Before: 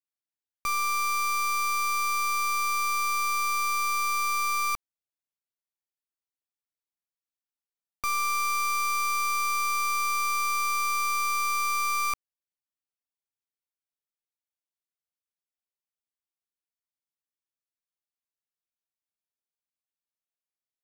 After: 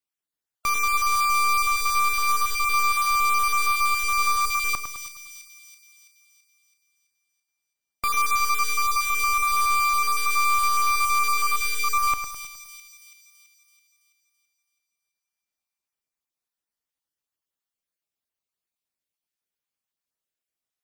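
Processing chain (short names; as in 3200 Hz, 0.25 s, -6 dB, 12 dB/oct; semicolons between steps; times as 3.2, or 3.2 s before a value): random spectral dropouts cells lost 25%; on a send: split-band echo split 2600 Hz, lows 0.104 s, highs 0.331 s, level -8 dB; on the sum: gain +5 dB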